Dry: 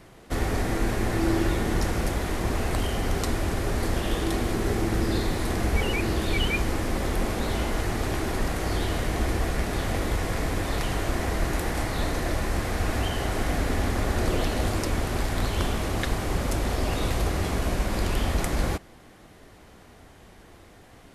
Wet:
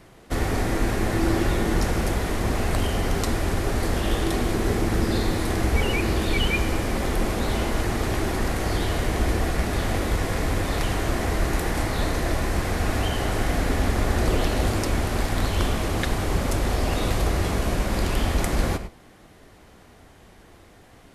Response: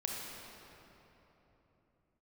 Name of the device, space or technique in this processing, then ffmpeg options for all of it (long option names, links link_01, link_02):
keyed gated reverb: -filter_complex "[0:a]asplit=3[link_01][link_02][link_03];[1:a]atrim=start_sample=2205[link_04];[link_02][link_04]afir=irnorm=-1:irlink=0[link_05];[link_03]apad=whole_len=932391[link_06];[link_05][link_06]sidechaingate=range=-33dB:threshold=-39dB:ratio=16:detection=peak,volume=-9.5dB[link_07];[link_01][link_07]amix=inputs=2:normalize=0"